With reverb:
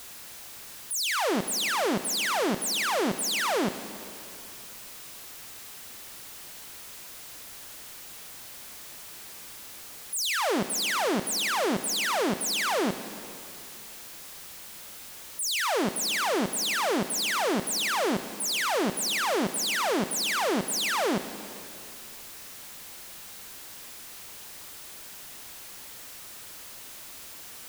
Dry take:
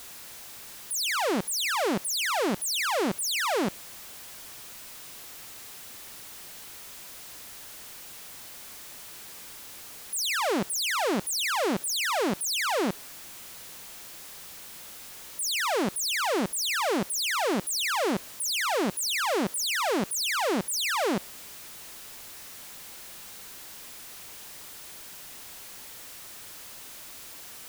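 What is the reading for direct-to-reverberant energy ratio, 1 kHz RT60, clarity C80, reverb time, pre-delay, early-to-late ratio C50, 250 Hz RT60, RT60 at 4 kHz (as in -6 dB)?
10.5 dB, 2.7 s, 12.5 dB, 2.7 s, 5 ms, 11.5 dB, 2.6 s, 2.5 s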